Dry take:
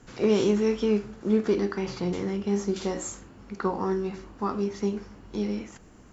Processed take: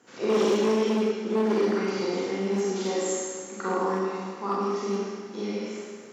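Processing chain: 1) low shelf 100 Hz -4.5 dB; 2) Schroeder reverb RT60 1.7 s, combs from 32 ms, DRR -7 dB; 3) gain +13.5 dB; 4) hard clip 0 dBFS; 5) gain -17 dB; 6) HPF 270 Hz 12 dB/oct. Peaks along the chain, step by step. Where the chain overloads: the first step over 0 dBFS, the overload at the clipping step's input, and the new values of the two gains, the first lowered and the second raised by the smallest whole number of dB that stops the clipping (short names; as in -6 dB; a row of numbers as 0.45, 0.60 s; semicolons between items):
-13.0, -4.5, +9.0, 0.0, -17.0, -13.0 dBFS; step 3, 9.0 dB; step 3 +4.5 dB, step 5 -8 dB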